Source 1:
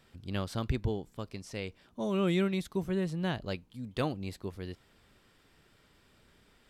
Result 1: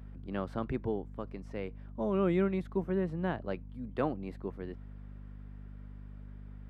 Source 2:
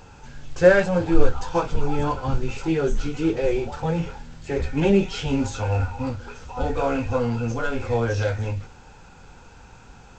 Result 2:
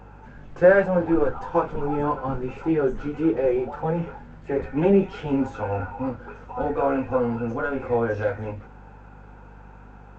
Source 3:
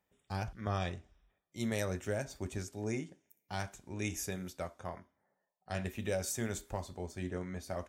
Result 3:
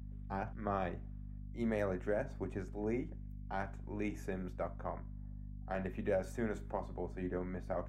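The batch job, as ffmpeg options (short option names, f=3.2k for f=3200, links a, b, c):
-filter_complex "[0:a]apsyclip=8.5dB,acrossover=split=160 2000:gain=0.2 1 0.0794[a][b][c];[a][b][c]amix=inputs=3:normalize=0,aeval=exprs='val(0)+0.0126*(sin(2*PI*50*n/s)+sin(2*PI*2*50*n/s)/2+sin(2*PI*3*50*n/s)/3+sin(2*PI*4*50*n/s)/4+sin(2*PI*5*50*n/s)/5)':c=same,volume=-7dB"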